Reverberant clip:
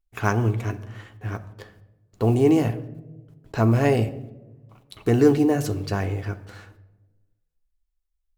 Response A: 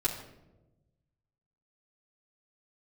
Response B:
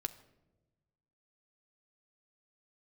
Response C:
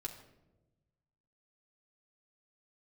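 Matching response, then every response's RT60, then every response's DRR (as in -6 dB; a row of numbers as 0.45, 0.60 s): B; 1.0, 1.1, 1.0 s; -7.5, 8.0, -1.5 dB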